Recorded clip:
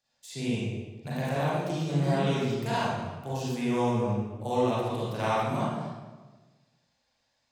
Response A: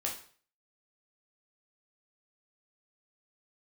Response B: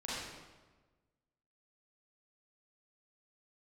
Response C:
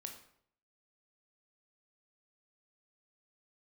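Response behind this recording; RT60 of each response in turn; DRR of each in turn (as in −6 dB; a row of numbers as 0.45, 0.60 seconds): B; 0.45, 1.3, 0.65 seconds; −2.0, −9.0, 3.5 decibels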